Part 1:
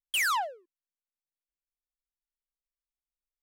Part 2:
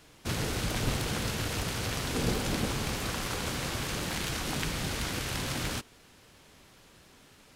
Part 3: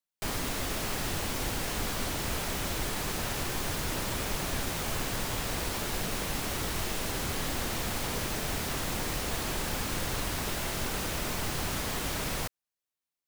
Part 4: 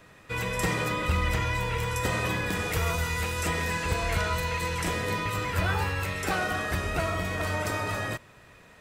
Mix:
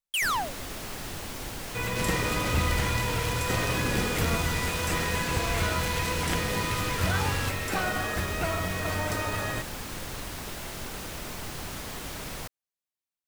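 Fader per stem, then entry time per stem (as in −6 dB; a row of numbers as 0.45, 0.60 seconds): 0.0, −1.0, −4.5, −1.0 decibels; 0.00, 1.70, 0.00, 1.45 seconds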